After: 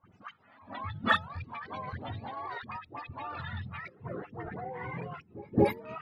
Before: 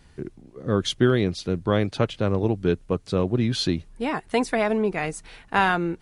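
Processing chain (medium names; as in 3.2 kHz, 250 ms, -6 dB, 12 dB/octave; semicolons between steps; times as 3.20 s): spectrum inverted on a logarithmic axis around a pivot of 570 Hz; treble shelf 7.3 kHz +6 dB; hum notches 50/100/150/200/250/300/350/400/450/500 Hz; level held to a coarse grid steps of 19 dB; transient shaper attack -1 dB, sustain -6 dB; phase dispersion highs, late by 91 ms, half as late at 700 Hz; on a send: reverse echo 228 ms -22 dB; on the sum: formant shift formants +5 st; level-controlled noise filter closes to 1.7 kHz, open at -24 dBFS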